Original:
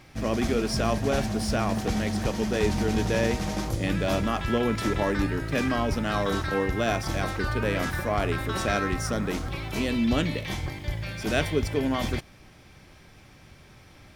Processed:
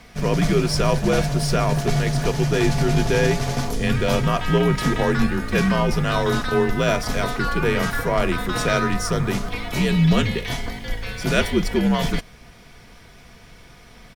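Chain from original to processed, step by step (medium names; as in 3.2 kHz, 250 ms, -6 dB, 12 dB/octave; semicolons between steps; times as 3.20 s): comb 4 ms, depth 41%; frequency shift -68 Hz; trim +5.5 dB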